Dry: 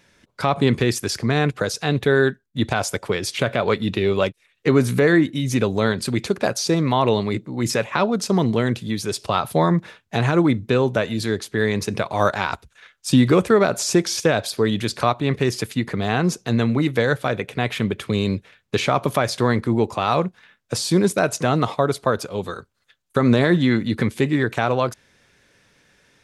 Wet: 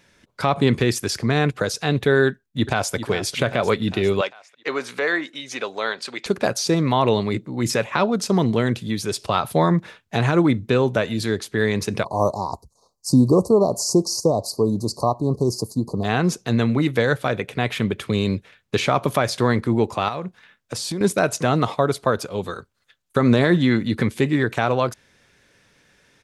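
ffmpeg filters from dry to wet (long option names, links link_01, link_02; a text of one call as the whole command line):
ffmpeg -i in.wav -filter_complex "[0:a]asplit=2[link_01][link_02];[link_02]afade=type=in:start_time=2.27:duration=0.01,afade=type=out:start_time=2.94:duration=0.01,aecho=0:1:400|800|1200|1600|2000|2400|2800|3200:0.281838|0.183195|0.119077|0.0773998|0.0503099|0.0327014|0.0212559|0.0138164[link_03];[link_01][link_03]amix=inputs=2:normalize=0,asettb=1/sr,asplit=3[link_04][link_05][link_06];[link_04]atrim=end=4.214[link_07];[link_05]atrim=start=4.21:end=6.26,asetpts=PTS-STARTPTS,afade=type=in:duration=0.004:curve=qsin,afade=type=out:start_time=2.046:duration=0.004:curve=qsin,highpass=660,lowpass=5700[link_08];[link_06]atrim=start=6.256[link_09];[link_07][link_08]acrossfade=duration=0.004:curve1=hsin:curve2=qsin[link_10];[link_10][link_09]acrossfade=duration=0.004:curve1=qsin:curve2=hsin,asplit=3[link_11][link_12][link_13];[link_11]afade=type=out:start_time=12.03:duration=0.02[link_14];[link_12]asuperstop=centerf=2200:order=20:qfactor=0.7,afade=type=in:start_time=12.03:duration=0.02,afade=type=out:start_time=16.03:duration=0.02[link_15];[link_13]afade=type=in:start_time=16.03:duration=0.02[link_16];[link_14][link_15][link_16]amix=inputs=3:normalize=0,asettb=1/sr,asplit=3[link_17][link_18][link_19];[link_17]atrim=end=20.084[link_20];[link_18]atrim=start=20.08:end=21.01,asetpts=PTS-STARTPTS,afade=type=in:duration=0.004:curve=qsin,afade=type=out:start_time=0.926:duration=0.004:curve=qsin,acompressor=threshold=-24dB:ratio=5:attack=3.2:release=140:knee=1:detection=peak[link_21];[link_19]atrim=start=21.006[link_22];[link_20][link_21]acrossfade=duration=0.004:curve1=hsin:curve2=qsin[link_23];[link_23][link_22]acrossfade=duration=0.004:curve1=qsin:curve2=hsin" out.wav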